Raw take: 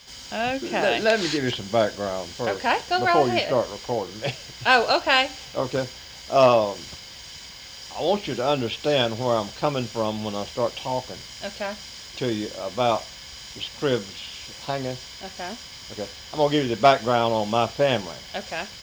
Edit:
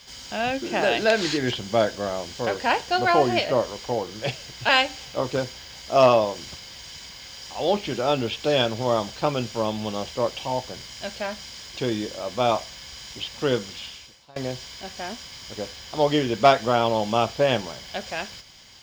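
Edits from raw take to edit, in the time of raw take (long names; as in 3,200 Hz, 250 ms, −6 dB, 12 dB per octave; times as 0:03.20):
0:04.69–0:05.09: remove
0:14.25–0:14.76: fade out quadratic, to −23 dB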